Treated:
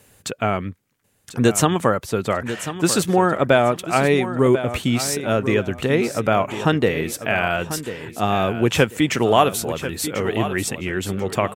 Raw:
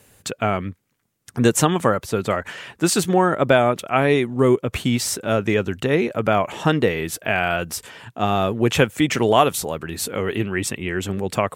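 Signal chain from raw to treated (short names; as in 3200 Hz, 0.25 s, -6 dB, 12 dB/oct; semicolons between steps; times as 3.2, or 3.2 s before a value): feedback echo 1.042 s, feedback 25%, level -11.5 dB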